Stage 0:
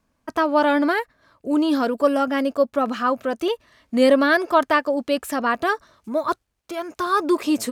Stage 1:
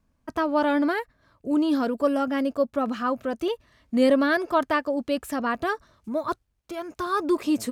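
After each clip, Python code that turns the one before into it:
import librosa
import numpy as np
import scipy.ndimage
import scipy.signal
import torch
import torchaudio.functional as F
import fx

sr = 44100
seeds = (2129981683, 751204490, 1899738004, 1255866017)

y = fx.low_shelf(x, sr, hz=190.0, db=11.5)
y = y * 10.0 ** (-6.0 / 20.0)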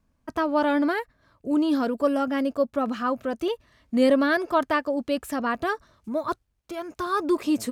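y = x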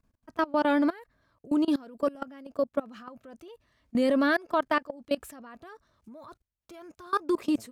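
y = fx.level_steps(x, sr, step_db=23)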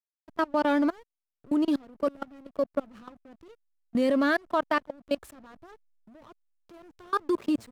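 y = fx.backlash(x, sr, play_db=-41.0)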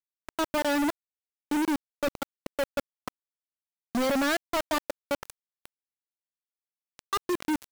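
y = fx.quant_companded(x, sr, bits=2)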